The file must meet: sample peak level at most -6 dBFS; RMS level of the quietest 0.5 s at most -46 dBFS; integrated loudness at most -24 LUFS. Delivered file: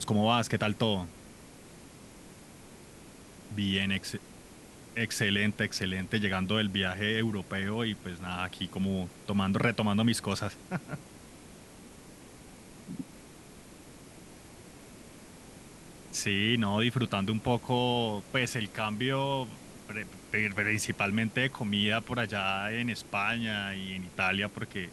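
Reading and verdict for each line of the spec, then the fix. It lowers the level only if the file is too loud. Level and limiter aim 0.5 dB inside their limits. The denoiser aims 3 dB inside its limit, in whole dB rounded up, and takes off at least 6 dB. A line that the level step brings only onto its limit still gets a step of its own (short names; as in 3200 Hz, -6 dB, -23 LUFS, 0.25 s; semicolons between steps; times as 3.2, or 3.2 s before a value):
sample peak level -12.0 dBFS: OK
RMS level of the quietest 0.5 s -51 dBFS: OK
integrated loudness -30.5 LUFS: OK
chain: none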